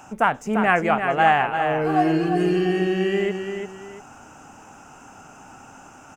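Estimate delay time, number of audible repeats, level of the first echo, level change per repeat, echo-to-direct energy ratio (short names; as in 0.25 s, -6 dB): 0.344 s, 2, -7.0 dB, -10.0 dB, -6.5 dB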